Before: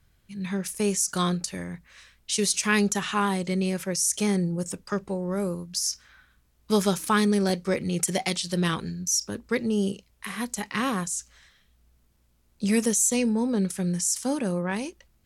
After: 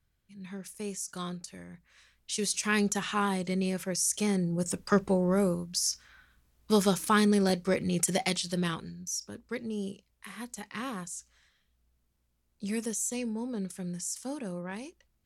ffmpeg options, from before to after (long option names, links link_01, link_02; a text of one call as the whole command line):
ffmpeg -i in.wav -af "volume=4.5dB,afade=type=in:start_time=1.66:duration=1.29:silence=0.398107,afade=type=in:start_time=4.46:duration=0.54:silence=0.375837,afade=type=out:start_time=5:duration=0.77:silence=0.473151,afade=type=out:start_time=8.29:duration=0.62:silence=0.398107" out.wav